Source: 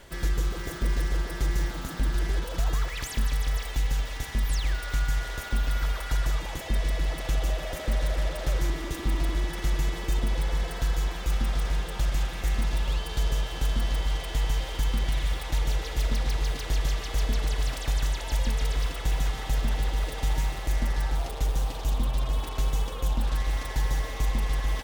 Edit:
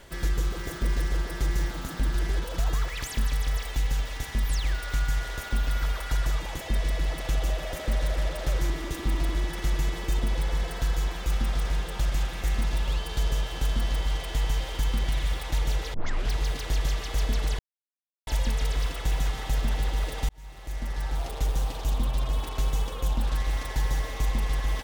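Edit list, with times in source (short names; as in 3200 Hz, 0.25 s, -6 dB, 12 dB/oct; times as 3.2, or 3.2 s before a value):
15.94 tape start 0.38 s
17.59–18.27 mute
20.29–21.36 fade in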